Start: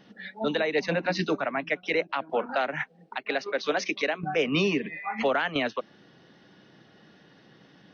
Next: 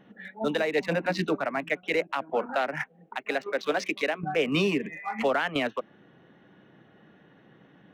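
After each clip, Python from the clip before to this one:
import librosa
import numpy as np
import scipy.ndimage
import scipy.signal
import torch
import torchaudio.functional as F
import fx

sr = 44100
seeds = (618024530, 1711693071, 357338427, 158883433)

y = fx.wiener(x, sr, points=9)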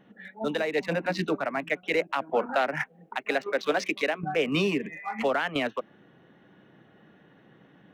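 y = fx.rider(x, sr, range_db=10, speed_s=2.0)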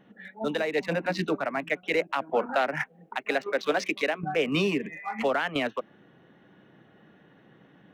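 y = x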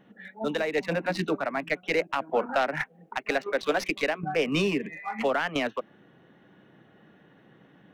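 y = fx.tracing_dist(x, sr, depth_ms=0.035)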